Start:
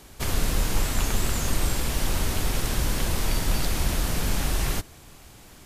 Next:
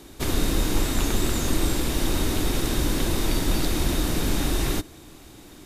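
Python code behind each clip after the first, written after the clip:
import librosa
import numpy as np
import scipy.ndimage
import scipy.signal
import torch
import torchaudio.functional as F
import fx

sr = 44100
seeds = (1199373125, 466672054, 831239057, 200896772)

y = fx.small_body(x, sr, hz=(310.0, 3700.0), ring_ms=25, db=11)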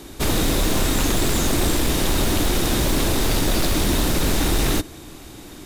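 y = 10.0 ** (-20.0 / 20.0) * (np.abs((x / 10.0 ** (-20.0 / 20.0) + 3.0) % 4.0 - 2.0) - 1.0)
y = y * librosa.db_to_amplitude(6.5)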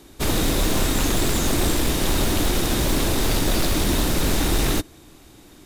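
y = fx.upward_expand(x, sr, threshold_db=-33.0, expansion=1.5)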